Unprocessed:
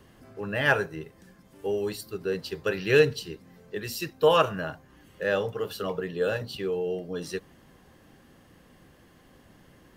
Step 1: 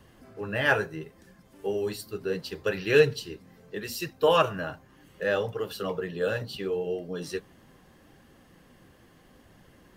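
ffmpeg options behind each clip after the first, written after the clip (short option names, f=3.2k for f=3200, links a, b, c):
-af "flanger=delay=1:depth=9.6:regen=-49:speed=0.73:shape=triangular,volume=3.5dB"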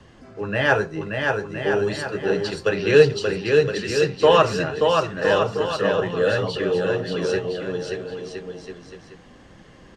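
-filter_complex "[0:a]acrossover=split=240|1600|3600[a][b][c][d];[c]alimiter=level_in=3dB:limit=-24dB:level=0:latency=1:release=448,volume=-3dB[e];[a][b][e][d]amix=inputs=4:normalize=0,lowpass=f=7.5k:w=0.5412,lowpass=f=7.5k:w=1.3066,aecho=1:1:580|1015|1341|1586|1769:0.631|0.398|0.251|0.158|0.1,volume=6.5dB"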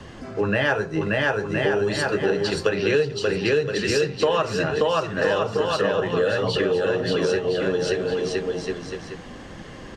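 -af "bandreject=f=60:t=h:w=6,bandreject=f=120:t=h:w=6,bandreject=f=180:t=h:w=6,acompressor=threshold=-28dB:ratio=6,volume=9dB"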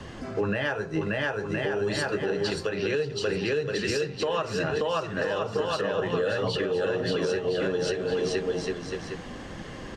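-af "alimiter=limit=-17.5dB:level=0:latency=1:release=366"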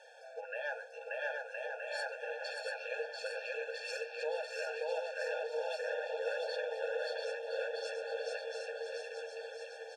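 -filter_complex "[0:a]asplit=2[a][b];[b]aecho=0:1:690|1311|1870|2373|2826:0.631|0.398|0.251|0.158|0.1[c];[a][c]amix=inputs=2:normalize=0,afftfilt=real='re*eq(mod(floor(b*sr/1024/460),2),1)':imag='im*eq(mod(floor(b*sr/1024/460),2),1)':win_size=1024:overlap=0.75,volume=-9dB"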